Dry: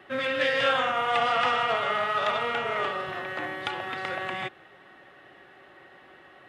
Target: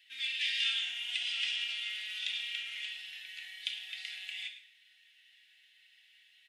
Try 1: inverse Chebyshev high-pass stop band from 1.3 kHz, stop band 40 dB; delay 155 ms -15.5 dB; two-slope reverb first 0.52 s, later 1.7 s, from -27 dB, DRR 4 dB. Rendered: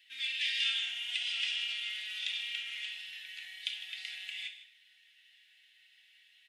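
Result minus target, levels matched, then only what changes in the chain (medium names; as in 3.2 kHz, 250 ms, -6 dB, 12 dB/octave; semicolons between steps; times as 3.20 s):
echo 46 ms late
change: delay 109 ms -15.5 dB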